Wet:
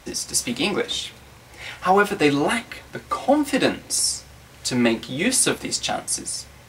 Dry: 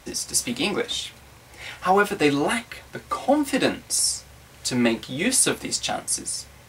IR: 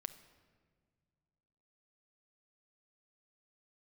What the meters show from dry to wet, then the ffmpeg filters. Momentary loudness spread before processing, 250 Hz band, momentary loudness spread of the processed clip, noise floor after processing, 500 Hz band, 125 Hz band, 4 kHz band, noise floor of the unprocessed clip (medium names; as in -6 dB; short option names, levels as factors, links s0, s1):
12 LU, +2.0 dB, 11 LU, -47 dBFS, +2.0 dB, +2.0 dB, +1.5 dB, -49 dBFS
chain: -filter_complex "[0:a]asplit=2[s0][s1];[1:a]atrim=start_sample=2205,asetrate=48510,aresample=44100,lowpass=8600[s2];[s1][s2]afir=irnorm=-1:irlink=0,volume=0.398[s3];[s0][s3]amix=inputs=2:normalize=0"